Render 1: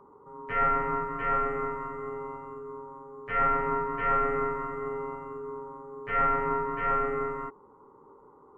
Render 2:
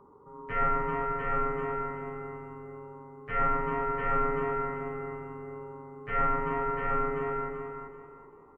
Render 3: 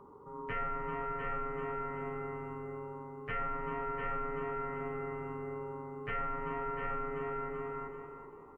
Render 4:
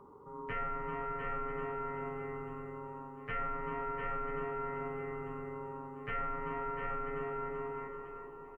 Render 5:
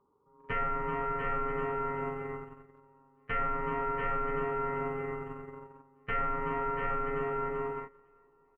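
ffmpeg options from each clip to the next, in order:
-filter_complex "[0:a]lowshelf=f=210:g=7,asplit=2[s0][s1];[s1]aecho=0:1:384|768|1152|1536:0.531|0.159|0.0478|0.0143[s2];[s0][s2]amix=inputs=2:normalize=0,volume=0.708"
-af "equalizer=f=2800:t=o:w=0.35:g=4.5,acompressor=threshold=0.0141:ratio=4,volume=1.19"
-af "aecho=1:1:987|1974|2961|3948:0.178|0.08|0.036|0.0162,volume=0.891"
-af "agate=range=0.0794:threshold=0.01:ratio=16:detection=peak,volume=1.88"

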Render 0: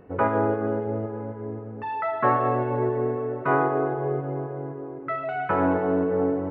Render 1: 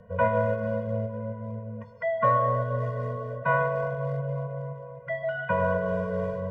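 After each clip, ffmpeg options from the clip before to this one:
-filter_complex "[0:a]acrossover=split=230|390|1200[s0][s1][s2][s3];[s1]asoftclip=type=hard:threshold=0.015[s4];[s0][s4][s2][s3]amix=inputs=4:normalize=0,afftfilt=real='re*eq(mod(floor(b*sr/1024/230),2),0)':imag='im*eq(mod(floor(b*sr/1024/230),2),0)':win_size=1024:overlap=0.75,volume=1.26"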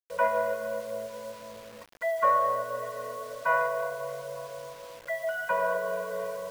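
-af "highpass=530,acrusher=bits=7:mix=0:aa=0.000001"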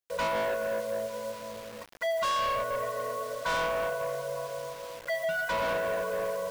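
-af "volume=33.5,asoftclip=hard,volume=0.0299,volume=1.5"

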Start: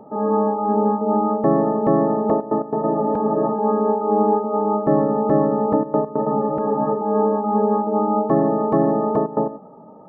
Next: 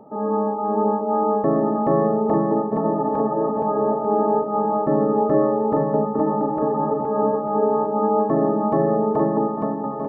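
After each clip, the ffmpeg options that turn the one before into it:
-af "aecho=1:1:470|893|1274|1616|1925:0.631|0.398|0.251|0.158|0.1,volume=0.708"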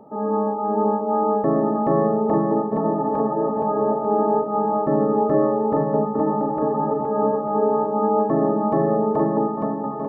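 -af "bandreject=f=61.14:t=h:w=4,bandreject=f=122.28:t=h:w=4,bandreject=f=183.42:t=h:w=4,bandreject=f=244.56:t=h:w=4,bandreject=f=305.7:t=h:w=4,bandreject=f=366.84:t=h:w=4,bandreject=f=427.98:t=h:w=4,bandreject=f=489.12:t=h:w=4,bandreject=f=550.26:t=h:w=4,bandreject=f=611.4:t=h:w=4,bandreject=f=672.54:t=h:w=4,bandreject=f=733.68:t=h:w=4,bandreject=f=794.82:t=h:w=4,bandreject=f=855.96:t=h:w=4,bandreject=f=917.1:t=h:w=4,bandreject=f=978.24:t=h:w=4,bandreject=f=1039.38:t=h:w=4,bandreject=f=1100.52:t=h:w=4,bandreject=f=1161.66:t=h:w=4,bandreject=f=1222.8:t=h:w=4,bandreject=f=1283.94:t=h:w=4,bandreject=f=1345.08:t=h:w=4,bandreject=f=1406.22:t=h:w=4,bandreject=f=1467.36:t=h:w=4,bandreject=f=1528.5:t=h:w=4,bandreject=f=1589.64:t=h:w=4"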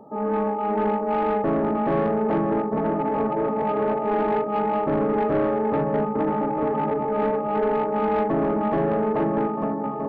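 -af "asoftclip=type=tanh:threshold=0.15"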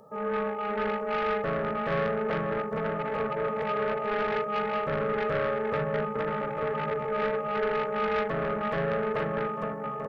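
-af "firequalizer=gain_entry='entry(170,0);entry(300,-18);entry(470,3);entry(810,-8);entry(1300,7);entry(5500,14)':delay=0.05:min_phase=1,volume=0.631"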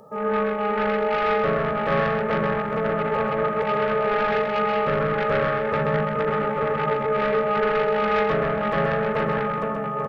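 -af "aecho=1:1:129:0.596,volume=1.88"

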